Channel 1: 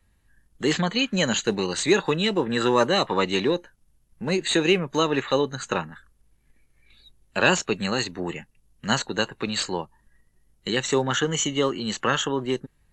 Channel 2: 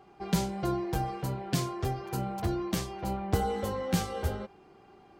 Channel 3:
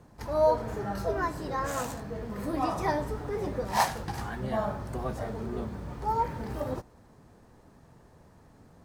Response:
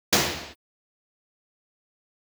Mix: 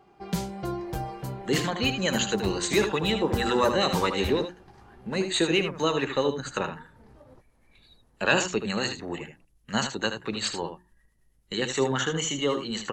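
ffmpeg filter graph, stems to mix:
-filter_complex "[0:a]bandreject=f=60:t=h:w=6,bandreject=f=120:t=h:w=6,bandreject=f=180:t=h:w=6,bandreject=f=240:t=h:w=6,bandreject=f=300:t=h:w=6,bandreject=f=360:t=h:w=6,acrossover=split=730[a][b];[a]aeval=exprs='val(0)*(1-0.5/2+0.5/2*cos(2*PI*9.2*n/s))':c=same[c];[b]aeval=exprs='val(0)*(1-0.5/2-0.5/2*cos(2*PI*9.2*n/s))':c=same[d];[c][d]amix=inputs=2:normalize=0,adelay=850,volume=-1dB,asplit=2[e][f];[f]volume=-8.5dB[g];[1:a]volume=-1.5dB[h];[2:a]lowpass=6k,acompressor=threshold=-41dB:ratio=3,adelay=600,volume=-11dB[i];[g]aecho=0:1:77:1[j];[e][h][i][j]amix=inputs=4:normalize=0"

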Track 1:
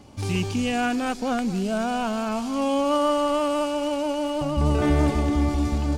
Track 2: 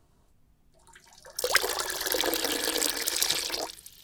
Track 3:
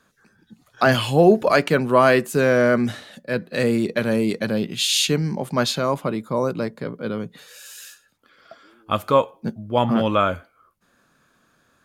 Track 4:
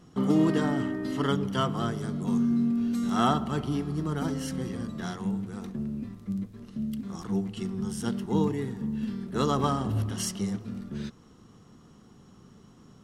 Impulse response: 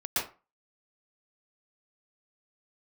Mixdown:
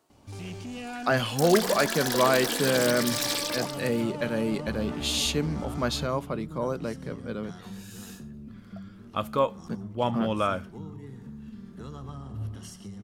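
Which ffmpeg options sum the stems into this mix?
-filter_complex "[0:a]asoftclip=type=tanh:threshold=-24.5dB,adelay=100,volume=-10dB,asplit=2[a][b];[b]volume=-19dB[c];[1:a]highpass=300,volume=24.5dB,asoftclip=hard,volume=-24.5dB,volume=0.5dB,asplit=2[d][e];[e]volume=-23dB[f];[2:a]adelay=250,volume=-7.5dB[g];[3:a]acrossover=split=120[h][i];[i]acompressor=threshold=-39dB:ratio=10[j];[h][j]amix=inputs=2:normalize=0,adelay=2450,volume=-4dB,asplit=2[k][l];[l]volume=-17.5dB[m];[4:a]atrim=start_sample=2205[n];[c][f][m]amix=inputs=3:normalize=0[o];[o][n]afir=irnorm=-1:irlink=0[p];[a][d][g][k][p]amix=inputs=5:normalize=0"

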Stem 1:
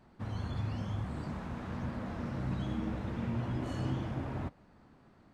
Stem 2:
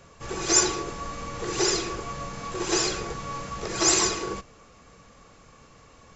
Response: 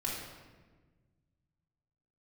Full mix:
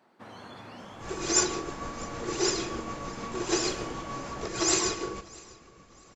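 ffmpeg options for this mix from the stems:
-filter_complex "[0:a]highpass=360,volume=1.5dB[a];[1:a]equalizer=f=290:w=1.5:g=3,tremolo=f=6.6:d=0.38,adelay=800,volume=-3.5dB,asplit=3[b][c][d];[c]volume=-18.5dB[e];[d]volume=-22.5dB[f];[2:a]atrim=start_sample=2205[g];[e][g]afir=irnorm=-1:irlink=0[h];[f]aecho=0:1:649|1298|1947|2596:1|0.3|0.09|0.027[i];[a][b][h][i]amix=inputs=4:normalize=0"

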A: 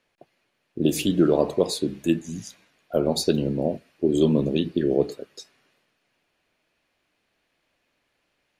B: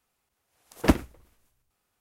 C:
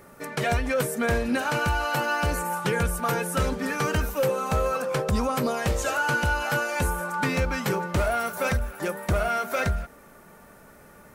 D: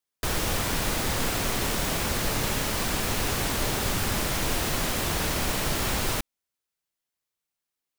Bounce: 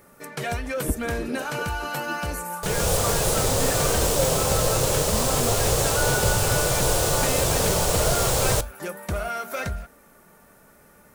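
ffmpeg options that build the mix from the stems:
-filter_complex "[0:a]deesser=0.85,volume=-12dB[a];[1:a]aemphasis=mode=reproduction:type=riaa,volume=-12.5dB[b];[2:a]highshelf=f=5.6k:g=6,volume=0.5dB[c];[3:a]dynaudnorm=f=100:g=7:m=11dB,equalizer=f=125:t=o:w=1:g=8,equalizer=f=250:t=o:w=1:g=-12,equalizer=f=500:t=o:w=1:g=12,equalizer=f=2k:t=o:w=1:g=-7,equalizer=f=8k:t=o:w=1:g=7,adelay=2400,volume=-3.5dB[d];[a][b][c][d]amix=inputs=4:normalize=0,flanger=delay=3.8:depth=3.5:regen=-84:speed=1:shape=sinusoidal"

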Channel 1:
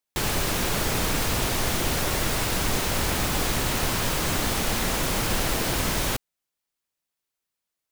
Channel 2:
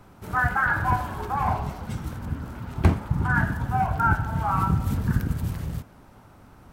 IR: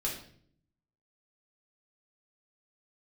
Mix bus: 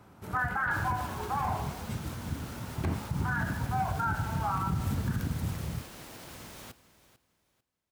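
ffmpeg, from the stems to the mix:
-filter_complex "[0:a]alimiter=limit=-20dB:level=0:latency=1:release=305,adelay=550,volume=-15.5dB,asplit=2[a][b];[b]volume=-15.5dB[c];[1:a]volume=-4dB[d];[c]aecho=0:1:446|892|1338|1784:1|0.24|0.0576|0.0138[e];[a][d][e]amix=inputs=3:normalize=0,highpass=63,alimiter=limit=-21.5dB:level=0:latency=1:release=47"

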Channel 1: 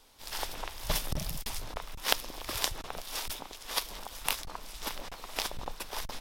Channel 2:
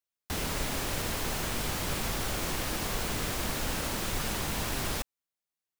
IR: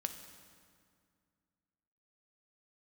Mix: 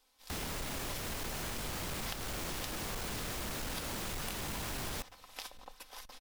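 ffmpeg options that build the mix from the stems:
-filter_complex "[0:a]lowshelf=f=400:g=-8,aecho=1:1:3.9:0.5,volume=-12dB,asplit=2[a][b];[b]volume=-19dB[c];[1:a]asoftclip=type=tanh:threshold=-30.5dB,volume=-2dB,asplit=2[d][e];[e]volume=-19.5dB[f];[2:a]atrim=start_sample=2205[g];[c][f]amix=inputs=2:normalize=0[h];[h][g]afir=irnorm=-1:irlink=0[i];[a][d][i]amix=inputs=3:normalize=0,acompressor=threshold=-36dB:ratio=6"

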